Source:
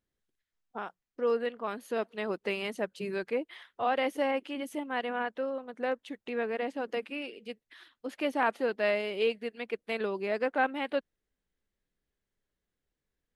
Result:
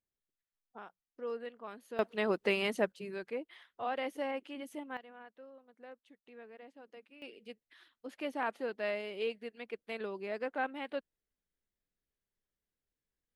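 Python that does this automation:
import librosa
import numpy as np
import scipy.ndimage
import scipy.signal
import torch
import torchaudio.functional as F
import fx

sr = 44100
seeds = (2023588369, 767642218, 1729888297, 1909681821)

y = fx.gain(x, sr, db=fx.steps((0.0, -11.0), (1.99, 2.0), (2.92, -7.5), (4.97, -20.0), (7.22, -7.5)))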